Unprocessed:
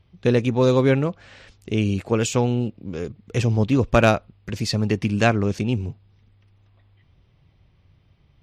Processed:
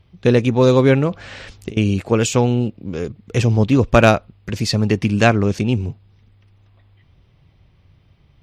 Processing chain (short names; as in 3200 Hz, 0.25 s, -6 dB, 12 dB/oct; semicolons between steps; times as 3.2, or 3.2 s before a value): 1.1–1.77 negative-ratio compressor -33 dBFS, ratio -1; gain +4.5 dB